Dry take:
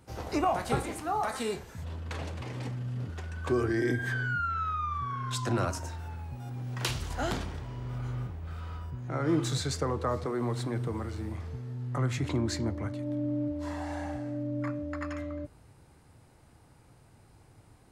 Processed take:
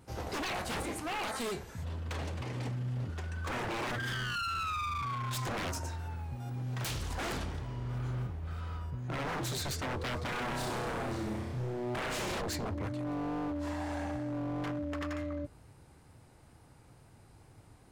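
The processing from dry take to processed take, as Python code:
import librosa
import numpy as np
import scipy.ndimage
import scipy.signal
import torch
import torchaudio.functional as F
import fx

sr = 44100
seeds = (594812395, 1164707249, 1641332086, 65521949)

y = fx.room_flutter(x, sr, wall_m=5.6, rt60_s=1.0, at=(10.24, 12.4), fade=0.02)
y = 10.0 ** (-30.5 / 20.0) * (np.abs((y / 10.0 ** (-30.5 / 20.0) + 3.0) % 4.0 - 2.0) - 1.0)
y = fx.wow_flutter(y, sr, seeds[0], rate_hz=2.1, depth_cents=18.0)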